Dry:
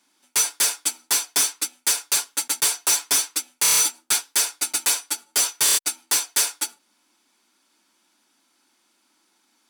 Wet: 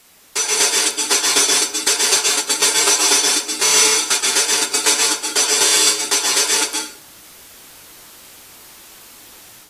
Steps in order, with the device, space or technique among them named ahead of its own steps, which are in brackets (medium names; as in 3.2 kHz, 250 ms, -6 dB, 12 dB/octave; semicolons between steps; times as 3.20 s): filmed off a television (band-pass 190–7900 Hz; peaking EQ 400 Hz +8.5 dB 0.55 oct; reverberation RT60 0.55 s, pre-delay 119 ms, DRR -0.5 dB; white noise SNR 25 dB; level rider gain up to 8 dB; AAC 48 kbps 32 kHz)